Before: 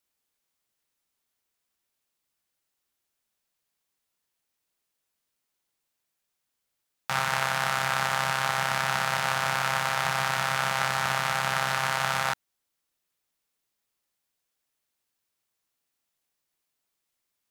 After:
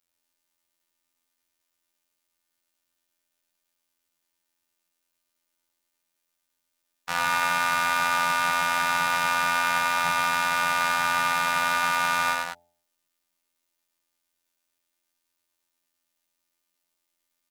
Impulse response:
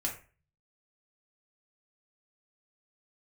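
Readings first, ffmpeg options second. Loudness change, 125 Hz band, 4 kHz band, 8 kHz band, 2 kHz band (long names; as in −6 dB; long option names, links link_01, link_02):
+3.0 dB, −9.0 dB, +1.0 dB, +1.5 dB, +3.5 dB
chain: -af "bandreject=frequency=46.49:width_type=h:width=4,bandreject=frequency=92.98:width_type=h:width=4,bandreject=frequency=139.47:width_type=h:width=4,bandreject=frequency=185.96:width_type=h:width=4,bandreject=frequency=232.45:width_type=h:width=4,bandreject=frequency=278.94:width_type=h:width=4,bandreject=frequency=325.43:width_type=h:width=4,bandreject=frequency=371.92:width_type=h:width=4,bandreject=frequency=418.41:width_type=h:width=4,bandreject=frequency=464.9:width_type=h:width=4,bandreject=frequency=511.39:width_type=h:width=4,bandreject=frequency=557.88:width_type=h:width=4,bandreject=frequency=604.37:width_type=h:width=4,bandreject=frequency=650.86:width_type=h:width=4,bandreject=frequency=697.35:width_type=h:width=4,bandreject=frequency=743.84:width_type=h:width=4,bandreject=frequency=790.33:width_type=h:width=4,bandreject=frequency=836.82:width_type=h:width=4,bandreject=frequency=883.31:width_type=h:width=4,afftfilt=real='hypot(re,im)*cos(PI*b)':imag='0':win_size=2048:overlap=0.75,aecho=1:1:96.21|192.4:0.708|0.447,volume=3.5dB"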